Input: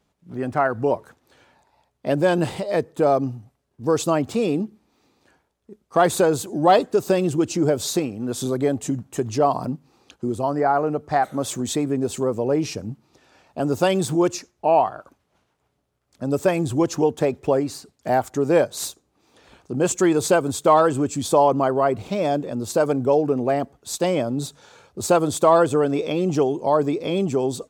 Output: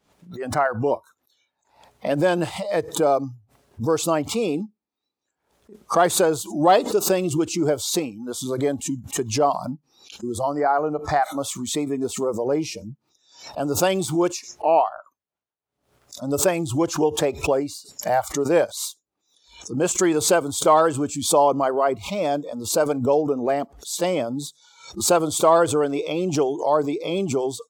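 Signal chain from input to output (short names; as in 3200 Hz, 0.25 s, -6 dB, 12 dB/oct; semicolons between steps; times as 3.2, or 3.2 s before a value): spectral noise reduction 24 dB; low shelf 190 Hz -7.5 dB; backwards sustainer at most 110 dB/s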